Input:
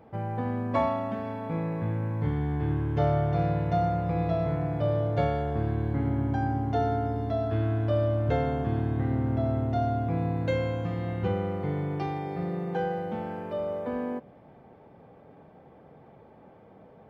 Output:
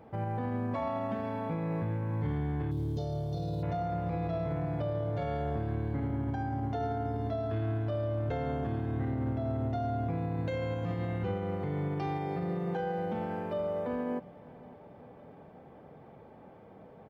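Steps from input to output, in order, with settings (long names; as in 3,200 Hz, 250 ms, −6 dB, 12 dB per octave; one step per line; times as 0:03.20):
brickwall limiter −25.5 dBFS, peak gain reduction 11.5 dB
0:02.71–0:03.63: drawn EQ curve 450 Hz 0 dB, 2,100 Hz −23 dB, 4,000 Hz +12 dB
repeating echo 557 ms, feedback 60%, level −22.5 dB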